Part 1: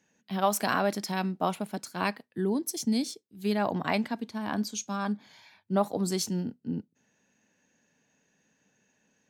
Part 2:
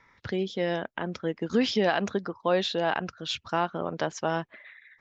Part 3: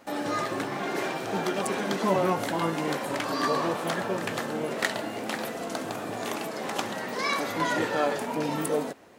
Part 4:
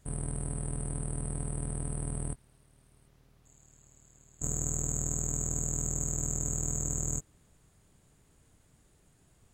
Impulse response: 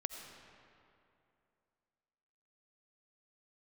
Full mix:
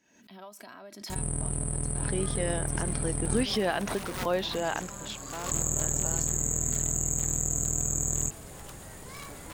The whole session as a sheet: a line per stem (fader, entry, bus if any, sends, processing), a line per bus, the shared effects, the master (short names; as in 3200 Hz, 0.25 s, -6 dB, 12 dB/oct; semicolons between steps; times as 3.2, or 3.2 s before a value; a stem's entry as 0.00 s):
-14.0 dB, 0.00 s, no send, comb 3.1 ms, depth 49%; compressor 4:1, threshold -31 dBFS, peak gain reduction 10 dB
4.75 s -4 dB -> 5.43 s -14 dB, 1.80 s, no send, dry
-17.5 dB, 1.90 s, no send, wrapped overs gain 19 dB
-0.5 dB, 1.10 s, no send, high shelf 9100 Hz +10.5 dB; fast leveller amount 50%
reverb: off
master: backwards sustainer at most 76 dB/s